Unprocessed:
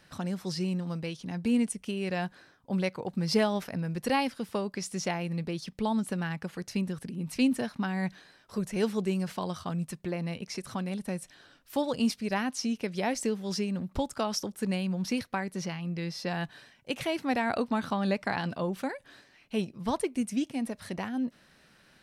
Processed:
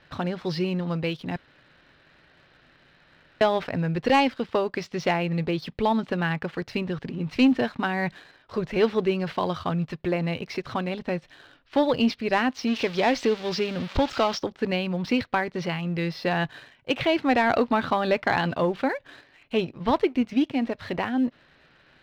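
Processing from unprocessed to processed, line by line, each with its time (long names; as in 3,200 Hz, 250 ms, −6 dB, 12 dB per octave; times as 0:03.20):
0:01.36–0:03.41: fill with room tone
0:12.67–0:14.38: spike at every zero crossing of −24.5 dBFS
whole clip: inverse Chebyshev low-pass filter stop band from 11,000 Hz, stop band 60 dB; parametric band 200 Hz −13 dB 0.26 octaves; leveller curve on the samples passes 1; level +5.5 dB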